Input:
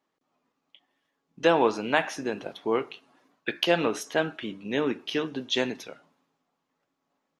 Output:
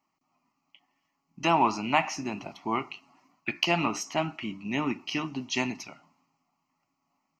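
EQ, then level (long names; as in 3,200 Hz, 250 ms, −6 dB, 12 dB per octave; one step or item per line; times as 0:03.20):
phaser with its sweep stopped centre 2,400 Hz, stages 8
+4.0 dB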